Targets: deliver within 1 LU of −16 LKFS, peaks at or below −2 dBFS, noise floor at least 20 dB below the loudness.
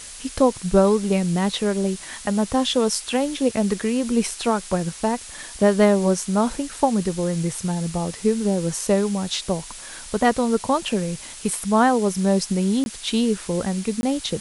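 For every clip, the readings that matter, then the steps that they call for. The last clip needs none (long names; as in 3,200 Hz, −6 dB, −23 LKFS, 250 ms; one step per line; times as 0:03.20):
number of dropouts 2; longest dropout 21 ms; background noise floor −38 dBFS; target noise floor −42 dBFS; integrated loudness −22.0 LKFS; sample peak −3.0 dBFS; target loudness −16.0 LKFS
→ repair the gap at 0:12.84/0:14.01, 21 ms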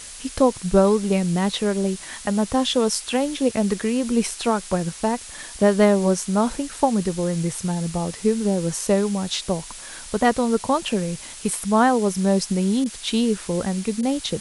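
number of dropouts 0; background noise floor −38 dBFS; target noise floor −42 dBFS
→ noise reduction from a noise print 6 dB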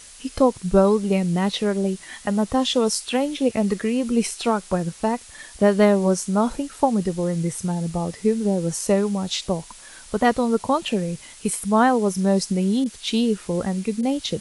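background noise floor −44 dBFS; integrated loudness −22.0 LKFS; sample peak −3.5 dBFS; target loudness −16.0 LKFS
→ level +6 dB
brickwall limiter −2 dBFS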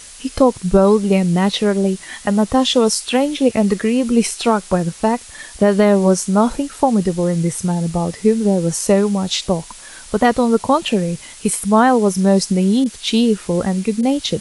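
integrated loudness −16.5 LKFS; sample peak −2.0 dBFS; background noise floor −38 dBFS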